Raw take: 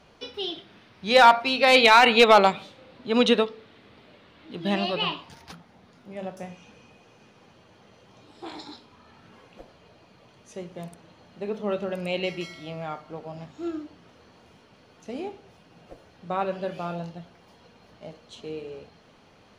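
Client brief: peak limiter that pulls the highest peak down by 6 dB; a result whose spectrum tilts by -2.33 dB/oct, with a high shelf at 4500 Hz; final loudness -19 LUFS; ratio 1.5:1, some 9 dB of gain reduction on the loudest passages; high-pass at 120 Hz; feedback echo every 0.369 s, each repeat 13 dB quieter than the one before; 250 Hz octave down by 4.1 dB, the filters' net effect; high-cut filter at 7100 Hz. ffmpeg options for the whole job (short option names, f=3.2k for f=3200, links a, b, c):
-af "highpass=120,lowpass=7.1k,equalizer=f=250:t=o:g=-4.5,highshelf=f=4.5k:g=-8.5,acompressor=threshold=-37dB:ratio=1.5,alimiter=limit=-20dB:level=0:latency=1,aecho=1:1:369|738|1107:0.224|0.0493|0.0108,volume=16.5dB"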